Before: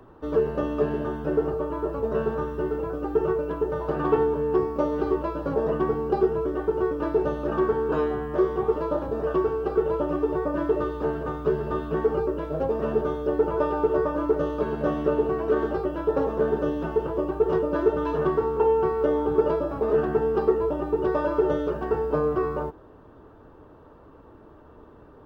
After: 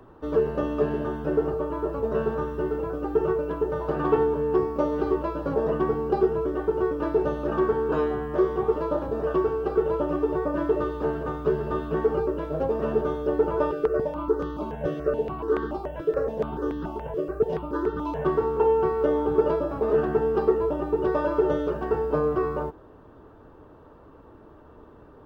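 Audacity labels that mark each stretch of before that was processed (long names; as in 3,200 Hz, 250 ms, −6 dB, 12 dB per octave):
13.710000	18.250000	step-sequenced phaser 7 Hz 240–2,400 Hz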